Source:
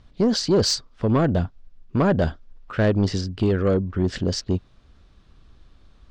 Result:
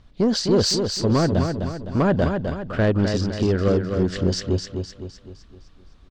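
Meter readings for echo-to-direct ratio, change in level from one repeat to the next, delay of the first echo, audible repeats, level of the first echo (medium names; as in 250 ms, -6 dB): -5.0 dB, -6.5 dB, 256 ms, 5, -6.0 dB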